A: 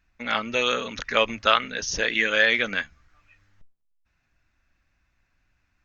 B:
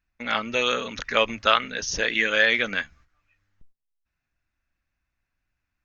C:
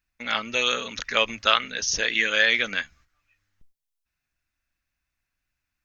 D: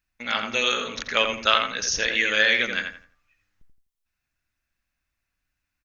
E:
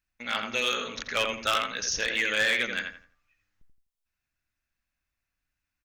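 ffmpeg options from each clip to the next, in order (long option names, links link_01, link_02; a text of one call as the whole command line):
ffmpeg -i in.wav -af "agate=range=-10dB:threshold=-52dB:ratio=16:detection=peak" out.wav
ffmpeg -i in.wav -af "highshelf=frequency=2400:gain=9.5,volume=-4dB" out.wav
ffmpeg -i in.wav -filter_complex "[0:a]asplit=2[link_01][link_02];[link_02]adelay=84,lowpass=frequency=2300:poles=1,volume=-4.5dB,asplit=2[link_03][link_04];[link_04]adelay=84,lowpass=frequency=2300:poles=1,volume=0.31,asplit=2[link_05][link_06];[link_06]adelay=84,lowpass=frequency=2300:poles=1,volume=0.31,asplit=2[link_07][link_08];[link_08]adelay=84,lowpass=frequency=2300:poles=1,volume=0.31[link_09];[link_01][link_03][link_05][link_07][link_09]amix=inputs=5:normalize=0" out.wav
ffmpeg -i in.wav -af "volume=14.5dB,asoftclip=hard,volume=-14.5dB,volume=-4dB" out.wav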